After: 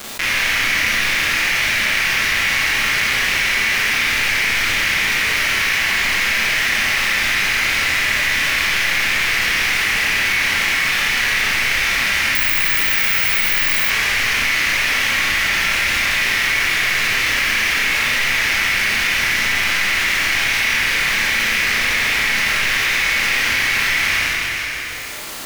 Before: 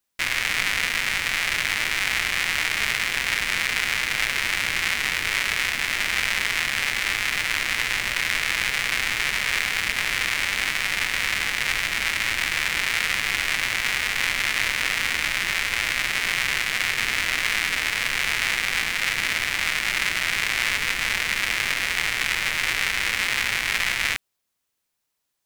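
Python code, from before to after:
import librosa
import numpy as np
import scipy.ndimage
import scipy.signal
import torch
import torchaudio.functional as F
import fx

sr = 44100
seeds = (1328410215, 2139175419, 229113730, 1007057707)

p1 = 10.0 ** (-16.0 / 20.0) * (np.abs((x / 10.0 ** (-16.0 / 20.0) + 3.0) % 4.0 - 2.0) - 1.0)
p2 = x + (p1 * librosa.db_to_amplitude(-5.0))
p3 = fx.dmg_crackle(p2, sr, seeds[0], per_s=320.0, level_db=-46.0)
p4 = p3 + fx.echo_single(p3, sr, ms=456, db=-23.0, dry=0)
p5 = fx.rev_schroeder(p4, sr, rt60_s=1.2, comb_ms=28, drr_db=-10.0)
p6 = fx.resample_bad(p5, sr, factor=2, down='none', up='zero_stuff', at=(12.35, 13.9))
p7 = fx.env_flatten(p6, sr, amount_pct=70)
y = p7 * librosa.db_to_amplitude(-9.0)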